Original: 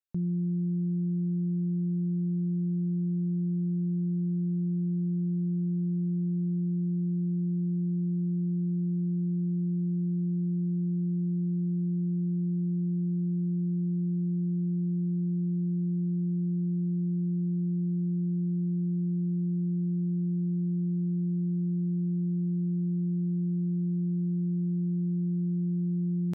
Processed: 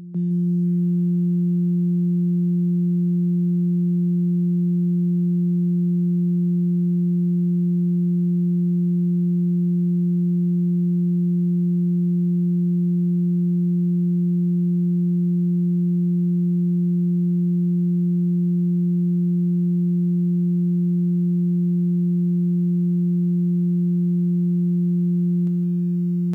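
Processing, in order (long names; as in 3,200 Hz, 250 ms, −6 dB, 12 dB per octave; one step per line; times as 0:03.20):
elliptic high-pass filter 160 Hz, stop band 60 dB
on a send: backwards echo 863 ms −12.5 dB
on the sum: feedback echo at a low word length 160 ms, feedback 35%, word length 9 bits, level −13.5 dB
level +5 dB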